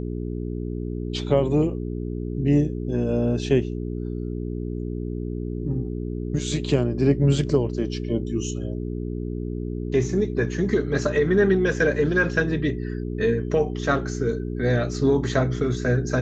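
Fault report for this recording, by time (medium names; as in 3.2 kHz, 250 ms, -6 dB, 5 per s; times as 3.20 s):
hum 60 Hz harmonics 7 -29 dBFS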